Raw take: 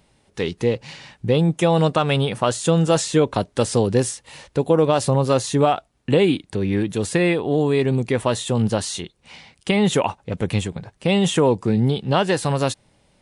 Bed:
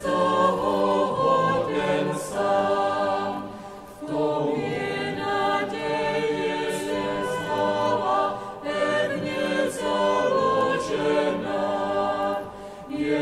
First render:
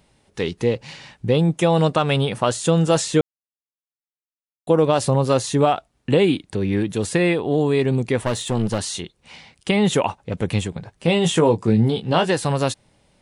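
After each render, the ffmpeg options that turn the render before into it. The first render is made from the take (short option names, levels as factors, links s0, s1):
-filter_complex "[0:a]asettb=1/sr,asplit=3[s0][s1][s2];[s0]atrim=end=8.254[s3];[s1]atrim=start=8.25:end=8.79,asetpts=PTS-STARTPTS,afade=t=in:d=0.004:c=qsin,afade=t=out:st=0.536:d=0.004:c=qsin,aeval=exprs='clip(val(0),-1,0.0794)':c=same[s4];[s2]atrim=start=8.786[s5];[s3][s4]acrossfade=d=0.004:c1=hsin:c2=qsin[s6];[s6][s5]acrossfade=d=0.004:c1=qsin:c2=hsin,asettb=1/sr,asplit=3[s7][s8][s9];[s7]atrim=end=10.964[s10];[s8]atrim=start=10.96:end=12.3,asetpts=PTS-STARTPTS,afade=t=in:d=0.004:c=qsin,afade=t=out:st=1.336:d=0.004:c=qsin,asplit=2[s11][s12];[s12]adelay=18,volume=0.447[s13];[s11][s13]amix=inputs=2:normalize=0,atrim=end_sample=59094[s14];[s9]atrim=start=12.296[s15];[s10][s14]acrossfade=d=0.004:c1=hsin:c2=qsin[s16];[s16][s15]acrossfade=d=0.004:c1=qsin:c2=hsin,asplit=3[s17][s18][s19];[s17]atrim=end=3.21,asetpts=PTS-STARTPTS,afade=t=out:st=3.206:d=0.004:c=hsin[s20];[s18]atrim=start=3.21:end=4.67,asetpts=PTS-STARTPTS,volume=0[s21];[s19]atrim=start=4.67,asetpts=PTS-STARTPTS,afade=t=in:d=0.004:c=hsin[s22];[s20][s21][s22]concat=n=3:v=0:a=1"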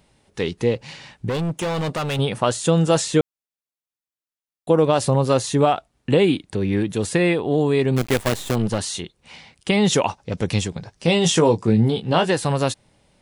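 -filter_complex "[0:a]asettb=1/sr,asplit=3[s0][s1][s2];[s0]atrim=end=1.294[s3];[s1]atrim=start=1.29:end=2.19,asetpts=PTS-STARTPTS,afade=t=in:d=0.004:c=qsin,afade=t=out:st=0.896:d=0.004:c=qsin,asoftclip=type=hard:threshold=0.0891[s4];[s2]atrim=start=2.186[s5];[s3][s4]acrossfade=d=0.004:c1=hsin:c2=qsin[s6];[s6][s5]acrossfade=d=0.004:c1=qsin:c2=hsin,asplit=3[s7][s8][s9];[s7]afade=t=out:st=7.96:d=0.02[s10];[s8]acrusher=bits=4:dc=4:mix=0:aa=0.000001,afade=t=in:st=7.96:d=0.02,afade=t=out:st=8.54:d=0.02[s11];[s9]afade=t=in:st=8.54:d=0.02[s12];[s10][s11][s12]amix=inputs=3:normalize=0,asettb=1/sr,asplit=3[s13][s14][s15];[s13]atrim=end=9.714[s16];[s14]atrim=start=9.71:end=11.62,asetpts=PTS-STARTPTS,afade=t=in:d=0.004:c=qsin,afade=t=out:st=1.906:d=0.004:c=qsin,equalizer=f=5400:w=1.8:g=10.5[s17];[s15]atrim=start=11.616[s18];[s16][s17]acrossfade=d=0.004:c1=hsin:c2=qsin[s19];[s19][s18]acrossfade=d=0.004:c1=qsin:c2=hsin"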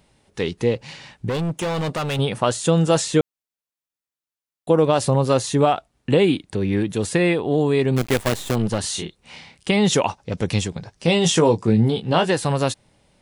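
-filter_complex "[0:a]asettb=1/sr,asplit=3[s0][s1][s2];[s0]atrim=end=8.814[s3];[s1]atrim=start=8.81:end=9.7,asetpts=PTS-STARTPTS,afade=t=in:d=0.004:c=qsin,afade=t=out:st=0.886:d=0.004:c=qsin,asplit=2[s4][s5];[s5]adelay=30,volume=0.708[s6];[s4][s6]amix=inputs=2:normalize=0,atrim=end_sample=39249[s7];[s2]atrim=start=9.696[s8];[s3][s7]acrossfade=d=0.004:c1=hsin:c2=qsin[s9];[s9][s8]acrossfade=d=0.004:c1=qsin:c2=hsin"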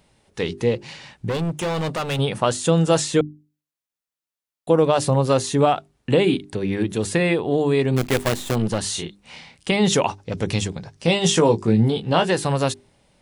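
-af "bandreject=f=50:t=h:w=6,bandreject=f=100:t=h:w=6,bandreject=f=150:t=h:w=6,bandreject=f=200:t=h:w=6,bandreject=f=250:t=h:w=6,bandreject=f=300:t=h:w=6,bandreject=f=350:t=h:w=6,bandreject=f=400:t=h:w=6"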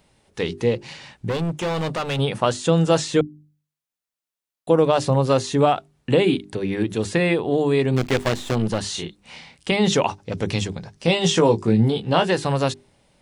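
-filter_complex "[0:a]bandreject=f=50:t=h:w=6,bandreject=f=100:t=h:w=6,bandreject=f=150:t=h:w=6,bandreject=f=200:t=h:w=6,acrossover=split=7200[s0][s1];[s1]acompressor=threshold=0.00447:ratio=4:attack=1:release=60[s2];[s0][s2]amix=inputs=2:normalize=0"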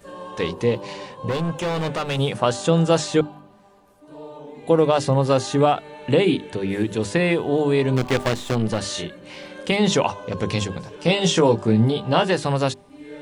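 -filter_complex "[1:a]volume=0.188[s0];[0:a][s0]amix=inputs=2:normalize=0"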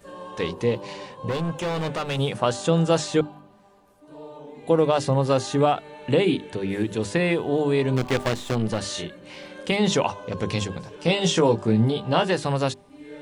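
-af "volume=0.75"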